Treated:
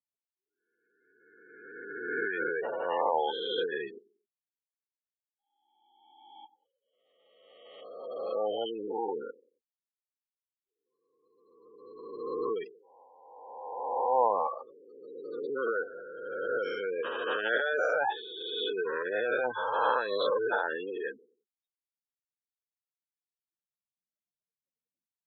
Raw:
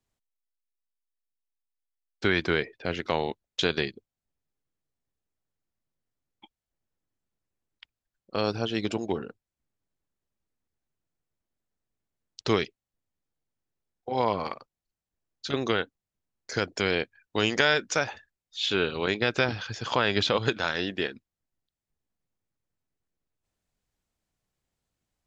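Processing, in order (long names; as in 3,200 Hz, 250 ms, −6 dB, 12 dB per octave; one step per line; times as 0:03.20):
peak hold with a rise ahead of every peak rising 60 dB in 1.77 s
on a send: tape delay 91 ms, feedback 37%, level −21 dB, low-pass 1,100 Hz
on the sum: transient designer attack −6 dB, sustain +5 dB
brickwall limiter −11.5 dBFS, peak gain reduction 7.5 dB
gate on every frequency bin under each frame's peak −10 dB strong
loudspeaker in its box 490–3,500 Hz, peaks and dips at 500 Hz +8 dB, 850 Hz +10 dB, 1,600 Hz +3 dB, 2,300 Hz −10 dB
level −4 dB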